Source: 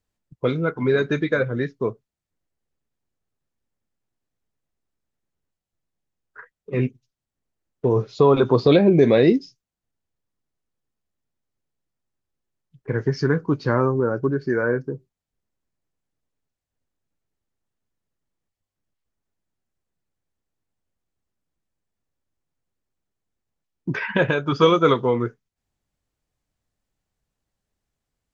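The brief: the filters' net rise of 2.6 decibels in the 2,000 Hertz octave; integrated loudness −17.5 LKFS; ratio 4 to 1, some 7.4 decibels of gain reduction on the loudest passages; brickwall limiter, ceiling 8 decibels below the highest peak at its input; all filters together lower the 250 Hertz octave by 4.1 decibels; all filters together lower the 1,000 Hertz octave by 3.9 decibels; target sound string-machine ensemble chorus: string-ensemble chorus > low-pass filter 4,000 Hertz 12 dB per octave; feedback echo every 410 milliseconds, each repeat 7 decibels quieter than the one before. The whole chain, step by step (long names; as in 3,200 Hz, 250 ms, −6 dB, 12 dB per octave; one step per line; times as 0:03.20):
parametric band 250 Hz −5.5 dB
parametric band 1,000 Hz −7.5 dB
parametric band 2,000 Hz +7 dB
downward compressor 4 to 1, threshold −22 dBFS
brickwall limiter −18.5 dBFS
repeating echo 410 ms, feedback 45%, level −7 dB
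string-ensemble chorus
low-pass filter 4,000 Hz 12 dB per octave
level +16 dB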